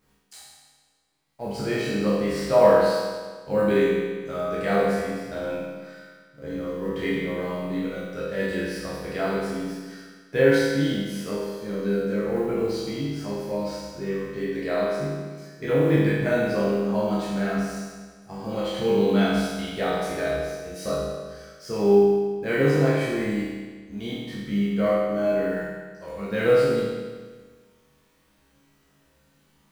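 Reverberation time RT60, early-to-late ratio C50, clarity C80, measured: 1.5 s, −2.5 dB, 0.5 dB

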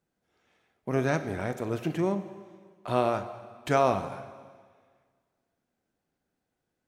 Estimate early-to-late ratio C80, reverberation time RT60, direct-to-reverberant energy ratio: 13.0 dB, 1.7 s, 10.0 dB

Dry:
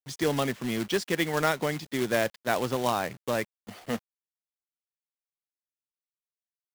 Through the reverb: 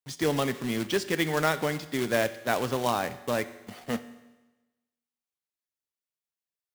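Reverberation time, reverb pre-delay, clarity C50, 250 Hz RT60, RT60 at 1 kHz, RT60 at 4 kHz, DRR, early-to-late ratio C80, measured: 1.1 s, 6 ms, 14.5 dB, 1.1 s, 1.1 s, 1.1 s, 11.5 dB, 16.0 dB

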